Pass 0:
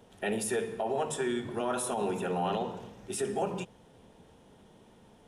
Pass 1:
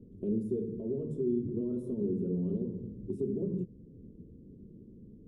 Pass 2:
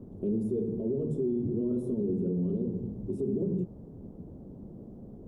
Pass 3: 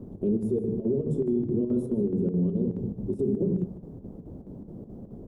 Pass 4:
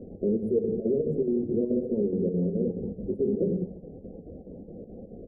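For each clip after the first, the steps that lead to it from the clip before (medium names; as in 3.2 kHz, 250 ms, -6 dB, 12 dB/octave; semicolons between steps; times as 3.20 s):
inverse Chebyshev low-pass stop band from 720 Hz, stop band 40 dB; in parallel at +1 dB: compression, threshold -44 dBFS, peak gain reduction 13 dB; on the sum: trim +2 dB
peak limiter -28 dBFS, peak gain reduction 6.5 dB; band noise 35–560 Hz -61 dBFS; trim +5.5 dB
square tremolo 4.7 Hz, depth 60%, duty 75%; delay 153 ms -16 dB; trim +4.5 dB
resampled via 22.05 kHz; loudest bins only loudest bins 32; graphic EQ with 31 bands 125 Hz -10 dB, 500 Hz +11 dB, 800 Hz +7 dB; trim -1.5 dB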